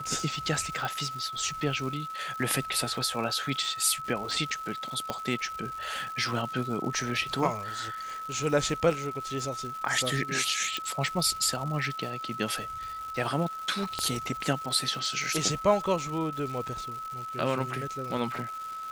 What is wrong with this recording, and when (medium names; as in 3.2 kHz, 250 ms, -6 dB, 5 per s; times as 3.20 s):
crackle 360 per s -37 dBFS
whine 1.3 kHz -35 dBFS
0.85 s: pop
5.10 s: pop -16 dBFS
10.77 s: pop
13.99 s: pop -15 dBFS